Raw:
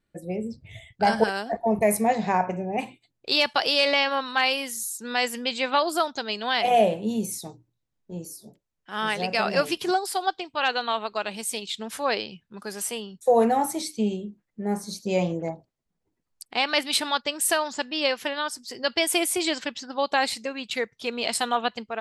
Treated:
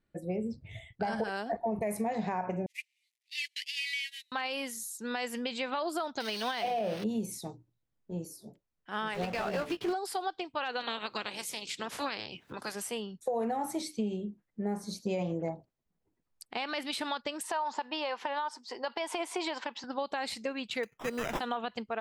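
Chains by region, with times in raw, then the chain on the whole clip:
2.66–4.32 s: one-bit delta coder 64 kbps, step -34 dBFS + gate -27 dBFS, range -31 dB + steep high-pass 1.9 kHz 96 dB/octave
6.20–7.04 s: zero-crossing glitches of -16.5 dBFS + Savitzky-Golay filter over 15 samples
9.14–9.93 s: block-companded coder 3-bit + low-pass 2.6 kHz 6 dB/octave + doubling 17 ms -8 dB
10.79–12.74 s: spectral peaks clipped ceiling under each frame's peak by 20 dB + high-pass 88 Hz + upward compressor, threshold -33 dBFS
17.43–19.84 s: band-pass 340–5800 Hz + peaking EQ 920 Hz +14.5 dB 0.55 oct + compression, threshold -23 dBFS
20.83–21.40 s: sample-rate reducer 4.4 kHz + peaking EQ 84 Hz -8 dB 1 oct
whole clip: peak limiter -17 dBFS; compression, threshold -27 dBFS; treble shelf 3.6 kHz -7.5 dB; trim -1.5 dB

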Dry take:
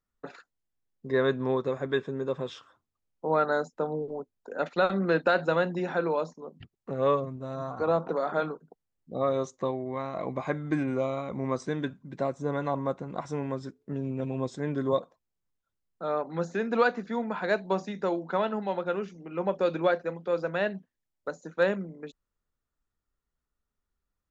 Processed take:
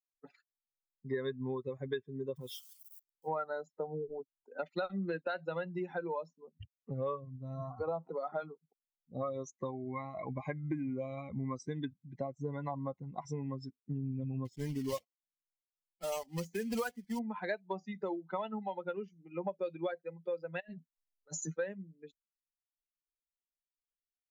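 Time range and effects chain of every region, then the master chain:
2.36–3.28 s: zero-crossing glitches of -36.5 dBFS + transient shaper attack -7 dB, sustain -3 dB
14.45–17.20 s: block-companded coder 3-bit + tape noise reduction on one side only decoder only
20.60–21.58 s: compressor with a negative ratio -40 dBFS + treble shelf 3.5 kHz +9 dB + doubling 13 ms -7 dB
whole clip: expander on every frequency bin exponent 2; compression 6:1, threshold -42 dBFS; trim +7.5 dB

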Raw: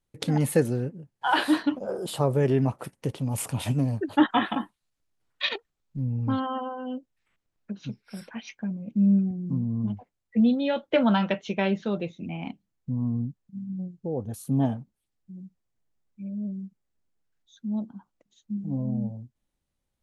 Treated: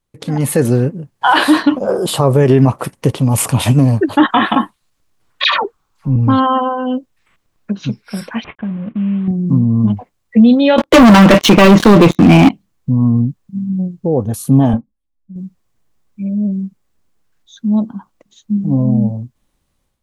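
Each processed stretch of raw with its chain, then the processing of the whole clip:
5.44–6.16 s: high-order bell 1.1 kHz +9 dB 1.1 oct + phase dispersion lows, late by 108 ms, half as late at 1.1 kHz
8.44–9.28 s: CVSD coder 16 kbps + low-pass 1.4 kHz 6 dB/octave + compression 2.5:1, threshold -36 dBFS
10.78–12.49 s: peaking EQ 300 Hz +8 dB 0.49 oct + waveshaping leveller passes 5
14.73–15.36 s: tilt EQ -2.5 dB/octave + comb 3.7 ms, depth 97% + upward expansion 2.5:1, over -41 dBFS
whole clip: peaking EQ 1.1 kHz +6 dB 0.22 oct; peak limiter -17 dBFS; level rider gain up to 10 dB; trim +5.5 dB

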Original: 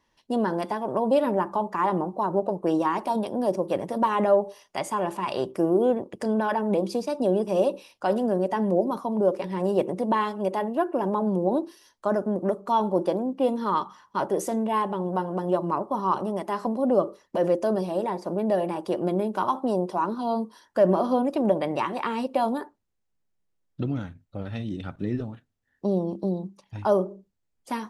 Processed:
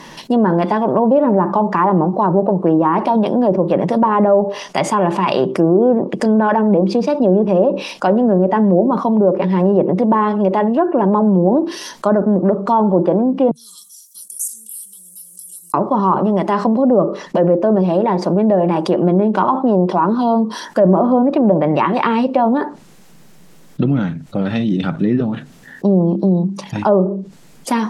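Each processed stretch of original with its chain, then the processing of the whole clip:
13.51–15.74 s: inverse Chebyshev high-pass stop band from 2.1 kHz, stop band 70 dB + comb 4.2 ms, depth 46%
whole clip: low-pass that closes with the level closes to 1.2 kHz, closed at -19 dBFS; resonant low shelf 120 Hz -8.5 dB, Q 3; level flattener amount 50%; trim +5.5 dB

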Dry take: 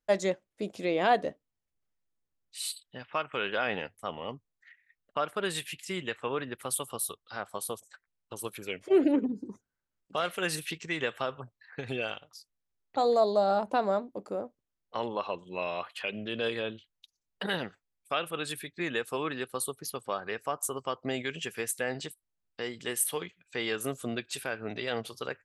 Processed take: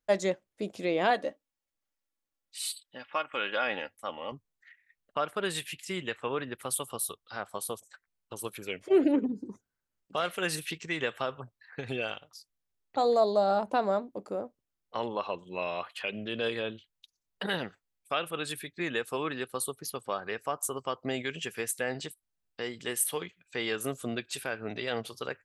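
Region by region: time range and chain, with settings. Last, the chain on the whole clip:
1.10–4.32 s: bass shelf 230 Hz -11 dB + comb 3.6 ms, depth 45%
whole clip: none

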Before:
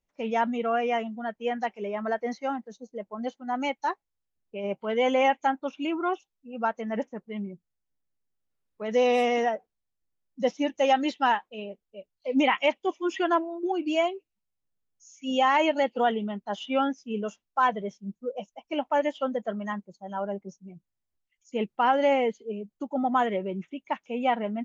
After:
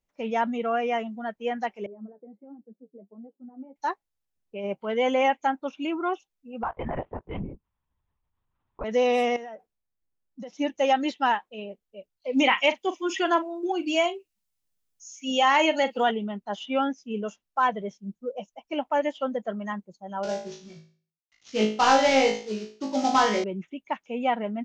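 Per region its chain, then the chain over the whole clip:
1.86–3.76 s: compression 10:1, threshold -33 dBFS + flange 1.4 Hz, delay 6.1 ms, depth 6.2 ms, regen +39% + Butterworth band-pass 260 Hz, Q 0.89
6.63–8.84 s: LPC vocoder at 8 kHz whisper + peaking EQ 970 Hz +13.5 dB 0.91 oct + compression, threshold -26 dBFS
9.36–10.53 s: compression 16:1, threshold -35 dBFS + tape noise reduction on one side only decoder only
12.33–16.11 s: treble shelf 2.6 kHz +9.5 dB + doubling 41 ms -13.5 dB
20.23–23.44 s: CVSD coder 32 kbps + treble shelf 2.7 kHz +11 dB + flutter echo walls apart 3.2 m, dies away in 0.42 s
whole clip: none

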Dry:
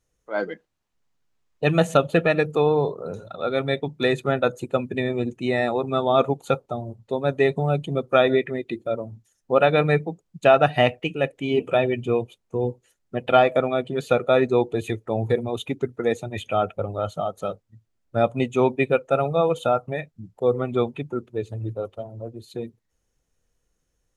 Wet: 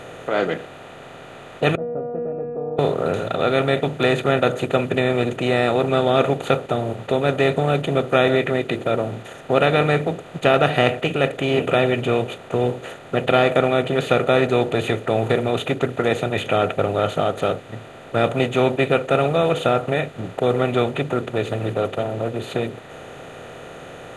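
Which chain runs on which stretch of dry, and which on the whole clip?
1.75–2.79 s: steep low-pass 560 Hz + feedback comb 240 Hz, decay 0.83 s, mix 100%
whole clip: spectral levelling over time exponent 0.4; dynamic bell 840 Hz, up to -5 dB, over -27 dBFS, Q 0.84; trim -1 dB

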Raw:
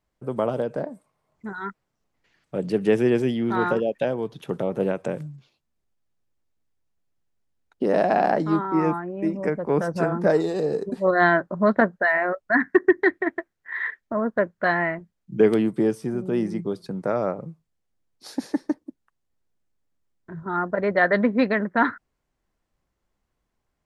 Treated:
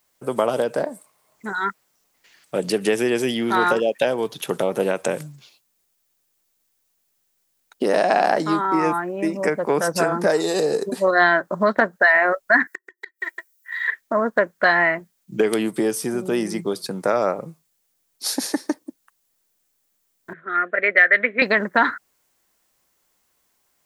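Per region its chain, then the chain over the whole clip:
12.67–13.88 s: pre-emphasis filter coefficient 0.97 + comb 2.1 ms, depth 68% + inverted gate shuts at -25 dBFS, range -30 dB
20.33–21.42 s: band-pass 470–3100 Hz + peaking EQ 2.2 kHz +8.5 dB 0.59 oct + static phaser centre 2.2 kHz, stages 4
whole clip: compression 4:1, threshold -21 dBFS; RIAA curve recording; trim +8.5 dB

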